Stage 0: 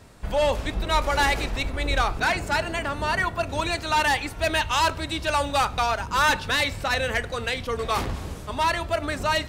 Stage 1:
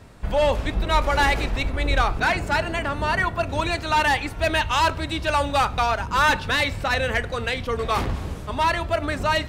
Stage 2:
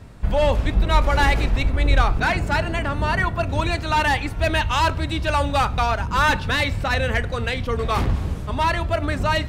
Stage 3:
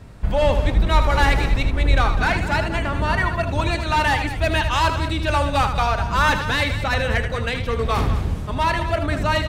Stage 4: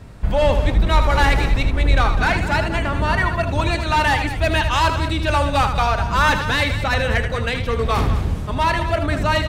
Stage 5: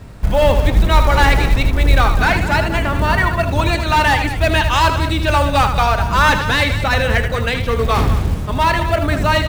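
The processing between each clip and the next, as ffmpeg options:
ffmpeg -i in.wav -af "bass=frequency=250:gain=2,treble=frequency=4000:gain=-5,volume=2dB" out.wav
ffmpeg -i in.wav -af "bass=frequency=250:gain=6,treble=frequency=4000:gain=-1" out.wav
ffmpeg -i in.wav -af "aecho=1:1:78.72|201.2:0.355|0.251" out.wav
ffmpeg -i in.wav -af "asoftclip=type=tanh:threshold=-5.5dB,volume=2dB" out.wav
ffmpeg -i in.wav -af "acrusher=bits=7:mode=log:mix=0:aa=0.000001,volume=3.5dB" out.wav

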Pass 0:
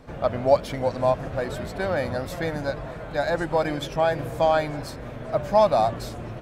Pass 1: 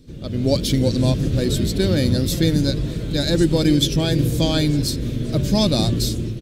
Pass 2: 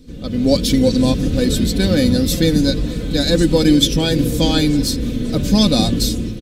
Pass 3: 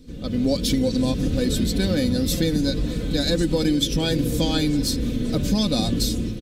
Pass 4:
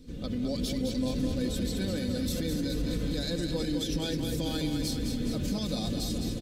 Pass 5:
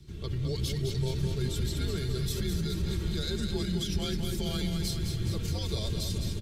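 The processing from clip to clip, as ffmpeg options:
ffmpeg -i in.wav -af "firequalizer=gain_entry='entry(340,0);entry(710,-26);entry(3600,2)':delay=0.05:min_phase=1,dynaudnorm=framelen=120:gausssize=7:maxgain=12dB,volume=2dB" out.wav
ffmpeg -i in.wav -af "aecho=1:1:4:0.55,volume=3dB" out.wav
ffmpeg -i in.wav -af "acompressor=threshold=-14dB:ratio=6,volume=-3dB" out.wav
ffmpeg -i in.wav -af "alimiter=limit=-20dB:level=0:latency=1:release=75,aecho=1:1:210|420|630|840|1050|1260|1470|1680:0.501|0.301|0.18|0.108|0.065|0.039|0.0234|0.014,volume=-4dB" out.wav
ffmpeg -i in.wav -af "afreqshift=-120" out.wav

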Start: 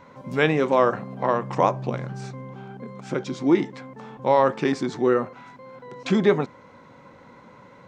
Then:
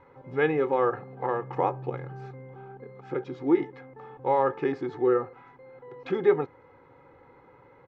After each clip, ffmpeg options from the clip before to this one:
ffmpeg -i in.wav -af "lowpass=2000,aecho=1:1:2.4:0.78,volume=-6.5dB" out.wav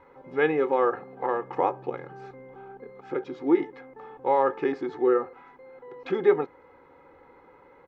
ffmpeg -i in.wav -af "equalizer=frequency=120:width=2.5:gain=-15,volume=1.5dB" out.wav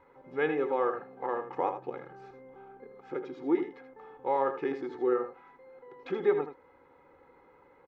ffmpeg -i in.wav -af "aecho=1:1:80:0.335,volume=-6dB" out.wav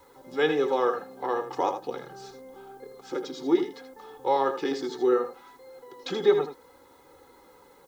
ffmpeg -i in.wav -filter_complex "[0:a]flanger=delay=2.2:depth=3:regen=-56:speed=0.7:shape=triangular,acrossover=split=320|720[link_01][link_02][link_03];[link_03]aexciter=amount=9.7:drive=5.4:freq=3500[link_04];[link_01][link_02][link_04]amix=inputs=3:normalize=0,volume=8.5dB" out.wav

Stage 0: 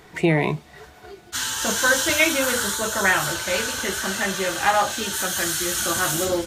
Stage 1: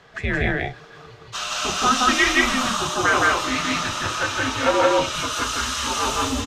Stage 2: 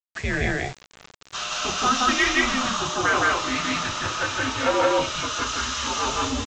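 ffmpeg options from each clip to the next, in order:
ffmpeg -i in.wav -filter_complex "[0:a]acrossover=split=450 6400:gain=0.224 1 0.0891[link_01][link_02][link_03];[link_01][link_02][link_03]amix=inputs=3:normalize=0,afreqshift=-280,aecho=1:1:169.1|204.1:1|0.316" out.wav
ffmpeg -i in.wav -af "aresample=16000,acrusher=bits=5:mix=0:aa=0.000001,aresample=44100,asoftclip=type=tanh:threshold=-6.5dB,volume=-2dB" out.wav

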